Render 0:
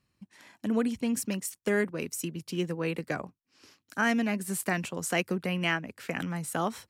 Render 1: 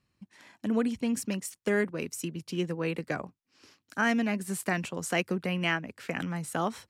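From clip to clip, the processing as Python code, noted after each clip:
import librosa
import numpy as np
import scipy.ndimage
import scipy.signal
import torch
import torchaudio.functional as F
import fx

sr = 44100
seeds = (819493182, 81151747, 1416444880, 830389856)

y = fx.high_shelf(x, sr, hz=12000.0, db=-10.0)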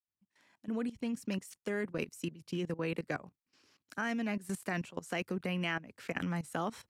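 y = fx.fade_in_head(x, sr, length_s=1.33)
y = fx.level_steps(y, sr, step_db=17)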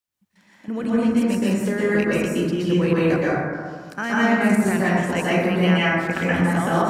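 y = fx.rev_plate(x, sr, seeds[0], rt60_s=1.8, hf_ratio=0.3, predelay_ms=110, drr_db=-8.0)
y = y * librosa.db_to_amplitude(8.0)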